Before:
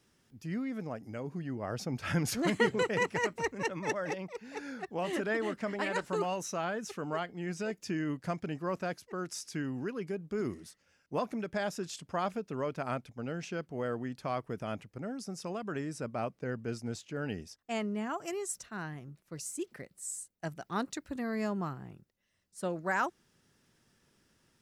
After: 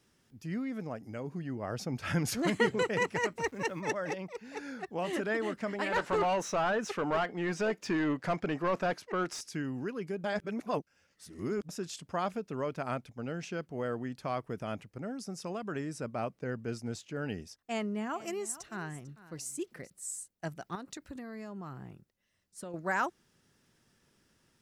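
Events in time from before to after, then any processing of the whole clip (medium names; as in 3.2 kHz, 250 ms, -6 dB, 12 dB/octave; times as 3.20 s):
3.41–3.81 s: small samples zeroed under -57 dBFS
5.92–9.41 s: overdrive pedal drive 20 dB, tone 1.6 kHz, clips at -20 dBFS
10.24–11.69 s: reverse
17.61–19.90 s: delay 447 ms -17 dB
20.75–22.74 s: compression, threshold -39 dBFS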